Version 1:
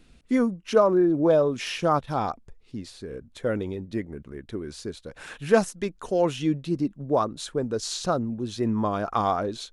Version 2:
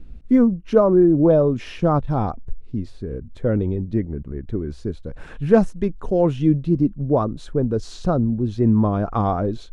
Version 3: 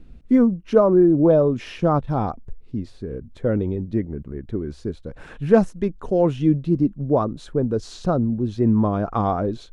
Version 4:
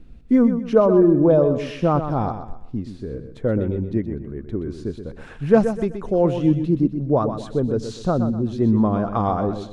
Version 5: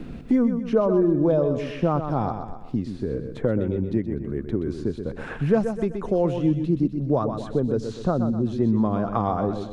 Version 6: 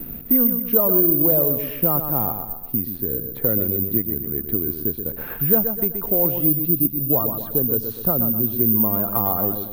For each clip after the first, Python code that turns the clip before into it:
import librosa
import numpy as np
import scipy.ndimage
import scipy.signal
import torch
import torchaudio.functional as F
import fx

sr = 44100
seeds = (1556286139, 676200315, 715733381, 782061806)

y1 = fx.tilt_eq(x, sr, slope=-4.0)
y2 = fx.low_shelf(y1, sr, hz=83.0, db=-7.5)
y3 = fx.echo_feedback(y2, sr, ms=125, feedback_pct=34, wet_db=-9.0)
y4 = fx.band_squash(y3, sr, depth_pct=70)
y4 = y4 * 10.0 ** (-3.5 / 20.0)
y5 = (np.kron(scipy.signal.resample_poly(y4, 1, 3), np.eye(3)[0]) * 3)[:len(y4)]
y5 = y5 * 10.0 ** (-2.0 / 20.0)